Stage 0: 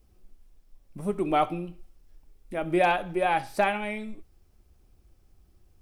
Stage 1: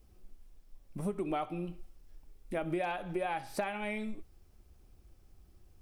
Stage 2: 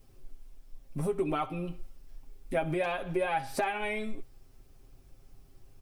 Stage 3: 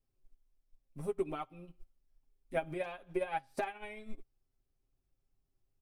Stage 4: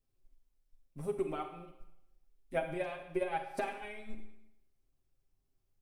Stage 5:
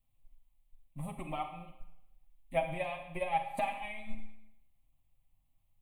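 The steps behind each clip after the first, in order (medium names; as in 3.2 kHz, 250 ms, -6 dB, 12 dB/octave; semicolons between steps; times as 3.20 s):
compression 10:1, threshold -31 dBFS, peak gain reduction 13.5 dB
comb 7.5 ms, depth 75%; trim +3 dB
upward expansion 2.5:1, over -40 dBFS; trim -2.5 dB
Schroeder reverb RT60 0.86 s, combs from 32 ms, DRR 6 dB
static phaser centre 1.5 kHz, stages 6; trim +5.5 dB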